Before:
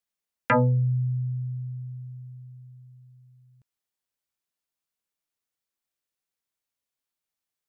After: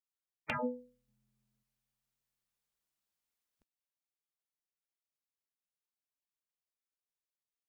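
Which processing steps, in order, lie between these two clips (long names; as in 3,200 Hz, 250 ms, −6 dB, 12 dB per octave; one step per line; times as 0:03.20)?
gate on every frequency bin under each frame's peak −10 dB weak
0:01.08–0:01.63: parametric band 220 Hz +10 dB 2.5 octaves
level −1.5 dB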